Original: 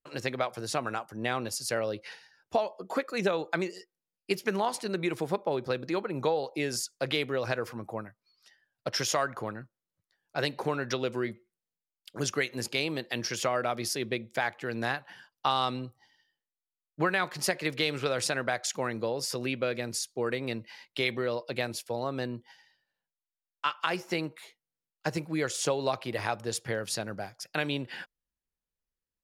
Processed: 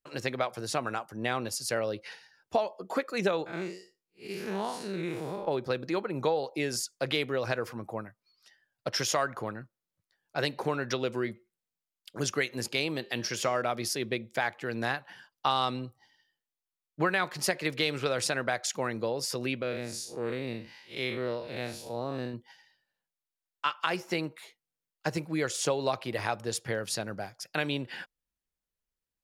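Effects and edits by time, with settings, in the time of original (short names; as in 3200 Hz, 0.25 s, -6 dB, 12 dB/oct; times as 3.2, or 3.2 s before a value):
3.46–5.48 time blur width 0.142 s
12.93–13.62 de-hum 199.8 Hz, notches 37
19.62–22.34 time blur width 0.13 s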